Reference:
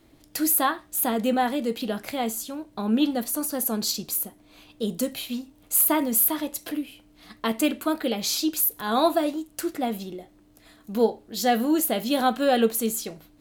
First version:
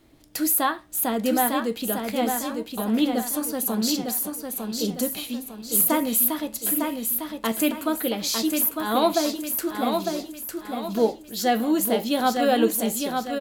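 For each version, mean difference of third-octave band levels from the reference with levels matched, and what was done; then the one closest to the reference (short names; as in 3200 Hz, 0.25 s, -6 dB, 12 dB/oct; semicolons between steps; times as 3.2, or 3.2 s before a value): 6.0 dB: feedback echo 0.903 s, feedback 40%, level -5 dB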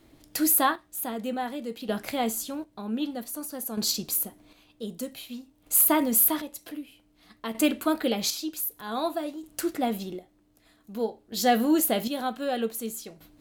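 4.0 dB: chopper 0.53 Hz, depth 60%, duty 40%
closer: second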